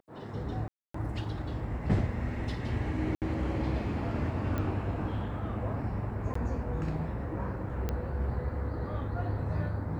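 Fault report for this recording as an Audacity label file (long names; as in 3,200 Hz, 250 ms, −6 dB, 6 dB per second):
0.680000	0.940000	drop-out 264 ms
3.150000	3.220000	drop-out 68 ms
4.580000	4.580000	click −21 dBFS
6.340000	6.350000	drop-out 14 ms
7.890000	7.890000	click −19 dBFS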